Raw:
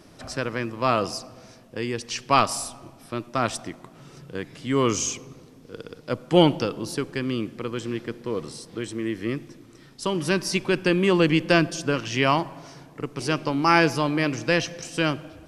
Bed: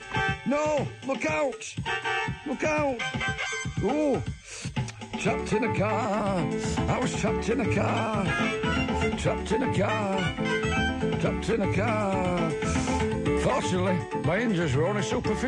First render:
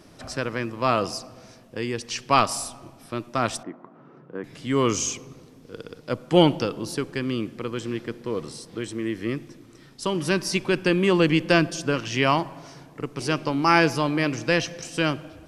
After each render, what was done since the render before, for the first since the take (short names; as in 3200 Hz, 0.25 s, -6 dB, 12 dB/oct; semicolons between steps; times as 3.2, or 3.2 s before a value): 3.63–4.44 Chebyshev band-pass 220–1300 Hz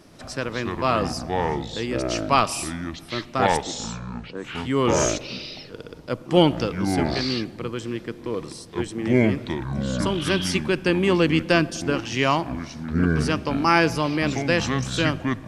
echoes that change speed 0.134 s, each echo -6 st, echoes 2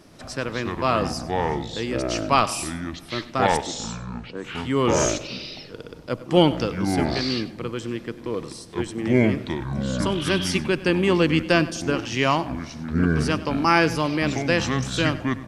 echo 97 ms -17.5 dB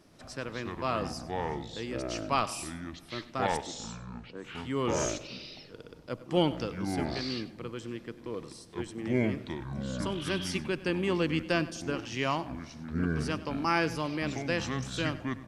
gain -9.5 dB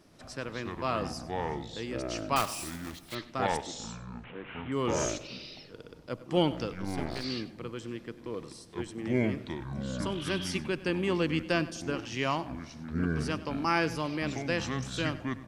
2.36–3.17 block floating point 3-bit; 4.24–4.72 delta modulation 16 kbps, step -41 dBFS; 6.73–7.24 half-wave gain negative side -12 dB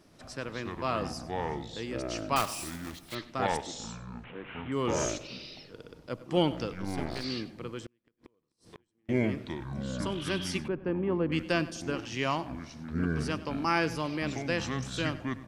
7.86–9.09 flipped gate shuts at -34 dBFS, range -37 dB; 10.68–11.32 LPF 1100 Hz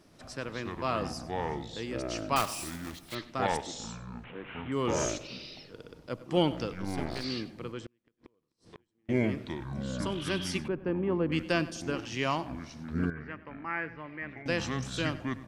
7.72–9.1 air absorption 53 m; 13.1–14.46 ladder low-pass 2100 Hz, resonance 70%